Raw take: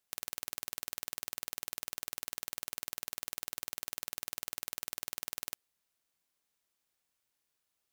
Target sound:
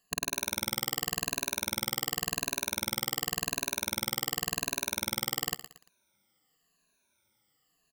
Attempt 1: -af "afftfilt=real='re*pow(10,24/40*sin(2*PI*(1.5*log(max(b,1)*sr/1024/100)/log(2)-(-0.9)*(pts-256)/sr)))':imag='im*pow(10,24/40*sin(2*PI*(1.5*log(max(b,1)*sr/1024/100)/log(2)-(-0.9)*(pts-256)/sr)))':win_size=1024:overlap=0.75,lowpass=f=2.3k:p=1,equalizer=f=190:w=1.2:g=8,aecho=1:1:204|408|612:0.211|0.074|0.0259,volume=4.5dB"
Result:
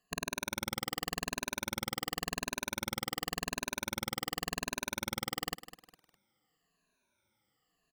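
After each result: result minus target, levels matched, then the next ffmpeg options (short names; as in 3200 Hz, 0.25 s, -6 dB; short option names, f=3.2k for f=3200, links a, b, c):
echo 89 ms late; 2000 Hz band +3.5 dB
-af "afftfilt=real='re*pow(10,24/40*sin(2*PI*(1.5*log(max(b,1)*sr/1024/100)/log(2)-(-0.9)*(pts-256)/sr)))':imag='im*pow(10,24/40*sin(2*PI*(1.5*log(max(b,1)*sr/1024/100)/log(2)-(-0.9)*(pts-256)/sr)))':win_size=1024:overlap=0.75,lowpass=f=2.3k:p=1,equalizer=f=190:w=1.2:g=8,aecho=1:1:115|230|345:0.211|0.074|0.0259,volume=4.5dB"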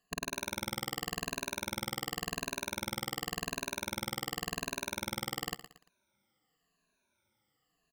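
2000 Hz band +3.5 dB
-af "afftfilt=real='re*pow(10,24/40*sin(2*PI*(1.5*log(max(b,1)*sr/1024/100)/log(2)-(-0.9)*(pts-256)/sr)))':imag='im*pow(10,24/40*sin(2*PI*(1.5*log(max(b,1)*sr/1024/100)/log(2)-(-0.9)*(pts-256)/sr)))':win_size=1024:overlap=0.75,lowpass=f=8.4k:p=1,equalizer=f=190:w=1.2:g=8,aecho=1:1:115|230|345:0.211|0.074|0.0259,volume=4.5dB"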